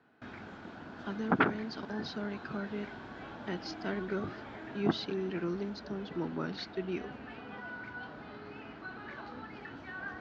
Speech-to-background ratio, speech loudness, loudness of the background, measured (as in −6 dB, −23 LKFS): 9.5 dB, −36.5 LKFS, −46.0 LKFS